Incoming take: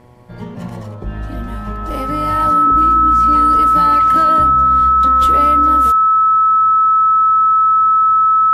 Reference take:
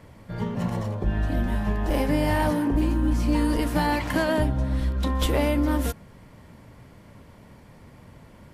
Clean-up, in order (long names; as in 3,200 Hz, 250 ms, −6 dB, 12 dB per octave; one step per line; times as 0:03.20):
hum removal 122.2 Hz, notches 9
notch filter 1,300 Hz, Q 30